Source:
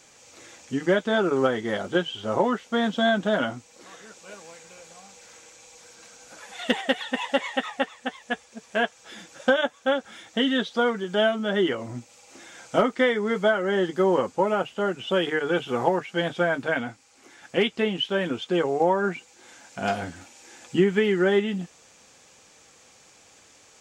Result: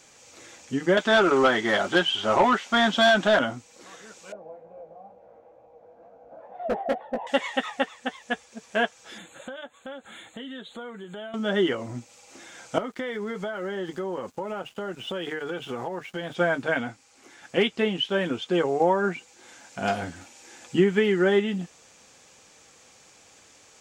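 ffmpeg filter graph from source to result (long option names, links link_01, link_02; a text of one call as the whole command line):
ffmpeg -i in.wav -filter_complex "[0:a]asettb=1/sr,asplit=3[link_01][link_02][link_03];[link_01]atrim=end=0.974[link_04];[link_02]atrim=start=0.97:end=3.39,asetpts=PTS-STARTPTS,afade=type=in:duration=0.004:curve=qsin,afade=type=out:start_time=2.416:duration=0.004:curve=qsin,bandreject=frequency=480:width=5.1,asplit=2[link_05][link_06];[link_06]highpass=frequency=720:poles=1,volume=16dB,asoftclip=type=tanh:threshold=-9.5dB[link_07];[link_05][link_07]amix=inputs=2:normalize=0,lowpass=frequency=4900:poles=1,volume=-6dB[link_08];[link_03]atrim=start=3.386[link_09];[link_04][link_08]acrossfade=duration=0.004:curve1=hsin:curve2=qsin[link_10];[link_10][link_09]acrossfade=duration=0.004:curve1=qsin:curve2=hsin,asettb=1/sr,asplit=3[link_11][link_12][link_13];[link_11]atrim=end=4.324[link_14];[link_12]atrim=start=4.32:end=7.27,asetpts=PTS-STARTPTS,afade=type=in:duration=0.004:curve=qsin,afade=type=out:start_time=2.946:duration=0.004:curve=qsin,lowpass=frequency=660:width_type=q:width=4.9,asoftclip=type=hard:threshold=-17dB,flanger=delay=15:depth=5.2:speed=2.2[link_15];[link_13]atrim=start=7.266[link_16];[link_14][link_15]acrossfade=duration=0.004:curve1=hsin:curve2=qsin[link_17];[link_17][link_16]acrossfade=duration=0.004:curve1=qsin:curve2=hsin,asettb=1/sr,asplit=3[link_18][link_19][link_20];[link_18]atrim=end=9.184[link_21];[link_19]atrim=start=9.18:end=11.34,asetpts=PTS-STARTPTS,afade=type=in:duration=0.004:curve=qsin,afade=type=out:start_time=2.156:duration=0.004:curve=qsin,acompressor=threshold=-38dB:ratio=4:attack=3.2:release=140:knee=1:detection=peak,asuperstop=centerf=5300:order=12:qfactor=2.3[link_22];[link_20]atrim=start=11.336[link_23];[link_21][link_22]acrossfade=duration=0.004:curve1=hsin:curve2=qsin[link_24];[link_24][link_23]acrossfade=duration=0.004:curve1=qsin:curve2=hsin,asettb=1/sr,asplit=3[link_25][link_26][link_27];[link_25]atrim=end=12.784[link_28];[link_26]atrim=start=12.78:end=16.35,asetpts=PTS-STARTPTS,afade=type=in:duration=0.004:curve=qsin,afade=type=out:start_time=3.566:duration=0.004:curve=qsin,aeval=exprs='sgn(val(0))*max(abs(val(0))-0.00237,0)':channel_layout=same,acompressor=threshold=-28dB:ratio=6:attack=3.2:release=140:knee=1:detection=peak[link_29];[link_27]atrim=start=16.346[link_30];[link_28][link_29]acrossfade=duration=0.004:curve1=hsin:curve2=qsin[link_31];[link_31][link_30]acrossfade=duration=0.004:curve1=qsin:curve2=hsin" out.wav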